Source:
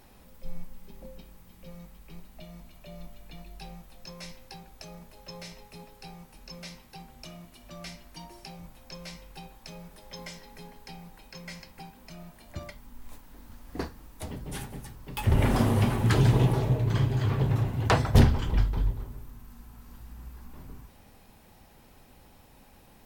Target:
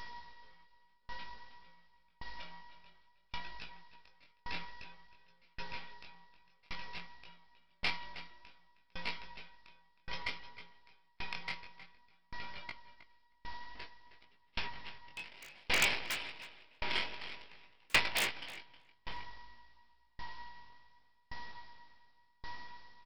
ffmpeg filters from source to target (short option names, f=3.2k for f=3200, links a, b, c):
-filter_complex "[0:a]afftfilt=real='re*lt(hypot(re,im),0.282)':imag='im*lt(hypot(re,im),0.282)':win_size=1024:overlap=0.75,acrossover=split=3500[a][b];[b]acompressor=threshold=-55dB:ratio=4:attack=1:release=60[c];[a][c]amix=inputs=2:normalize=0,afftfilt=real='re*gte(hypot(re,im),0.00282)':imag='im*gte(hypot(re,im),0.00282)':win_size=1024:overlap=0.75,highshelf=f=1.7k:t=q:w=3:g=11,acrossover=split=570|1100[d][e][f];[d]acompressor=threshold=-48dB:ratio=8[g];[g][e][f]amix=inputs=3:normalize=0,aeval=exprs='val(0)+0.0126*sin(2*PI*960*n/s)':c=same,aresample=11025,acrusher=bits=5:dc=4:mix=0:aa=0.000001,aresample=44100,aeval=exprs='(mod(4.73*val(0)+1,2)-1)/4.73':c=same,flanger=delay=17:depth=6:speed=0.56,asoftclip=type=tanh:threshold=-19dB,asplit=2[h][i];[i]adelay=315,lowpass=f=4.3k:p=1,volume=-4dB,asplit=2[j][k];[k]adelay=315,lowpass=f=4.3k:p=1,volume=0.23,asplit=2[l][m];[m]adelay=315,lowpass=f=4.3k:p=1,volume=0.23[n];[h][j][l][n]amix=inputs=4:normalize=0,aeval=exprs='val(0)*pow(10,-36*if(lt(mod(0.89*n/s,1),2*abs(0.89)/1000),1-mod(0.89*n/s,1)/(2*abs(0.89)/1000),(mod(0.89*n/s,1)-2*abs(0.89)/1000)/(1-2*abs(0.89)/1000))/20)':c=same,volume=4dB"